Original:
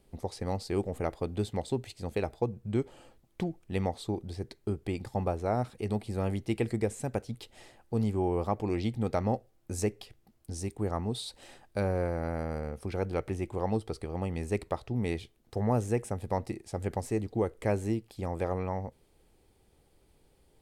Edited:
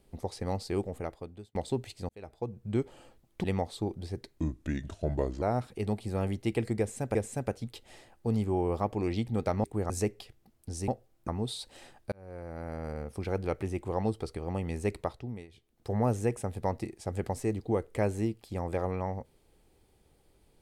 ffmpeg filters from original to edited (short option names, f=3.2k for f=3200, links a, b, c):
-filter_complex "[0:a]asplit=14[a][b][c][d][e][f][g][h][i][j][k][l][m][n];[a]atrim=end=1.55,asetpts=PTS-STARTPTS,afade=t=out:st=0.68:d=0.87[o];[b]atrim=start=1.55:end=2.09,asetpts=PTS-STARTPTS,afade=t=in:d=0.004:c=hsin,afade=t=out:st=0.536:d=0.004:c=hsin[p];[c]atrim=start=2.09:end=3.442,asetpts=PTS-STARTPTS,afade=t=in:d=0.66[q];[d]atrim=start=3.708:end=4.654[r];[e]atrim=start=4.65:end=5.45,asetpts=PTS-STARTPTS,asetrate=33957,aresample=44100,atrim=end_sample=45818,asetpts=PTS-STARTPTS[s];[f]atrim=start=5.446:end=7.182[t];[g]atrim=start=6.818:end=9.312[u];[h]atrim=start=10.688:end=10.952[v];[i]atrim=start=9.708:end=10.692[w];[j]atrim=start=9.308:end=9.712[x];[k]atrim=start=10.948:end=11.79,asetpts=PTS-STARTPTS,afade=t=out:st=0.838:d=0.004:c=hsin[y];[l]atrim=start=11.79:end=15.14,asetpts=PTS-STARTPTS,afade=t=in:d=1.02,afade=t=out:st=2.9:d=0.45:silence=0.0841395[z];[m]atrim=start=15.14:end=15.15,asetpts=PTS-STARTPTS,volume=-21.5dB[aa];[n]atrim=start=15.15,asetpts=PTS-STARTPTS,afade=t=in:d=0.45:silence=0.0841395[ab];[o][p][q]concat=n=3:v=0:a=1[ac];[ac][r]acrossfade=d=0.004:c1=hsin:c2=hsin[ad];[ad][s]acrossfade=d=0.004:c1=hsin:c2=hsin[ae];[ae][t]acrossfade=d=0.004:c1=hsin:c2=hsin[af];[af][u]acrossfade=d=0.004:c1=hsin:c2=hsin[ag];[ag][v]acrossfade=d=0.004:c1=hsin:c2=hsin[ah];[ah][w]acrossfade=d=0.004:c1=hsin:c2=hsin[ai];[ai][x]acrossfade=d=0.004:c1=hsin:c2=hsin[aj];[y][z][aa][ab]concat=n=4:v=0:a=1[ak];[aj][ak]acrossfade=d=0.004:c1=hsin:c2=hsin"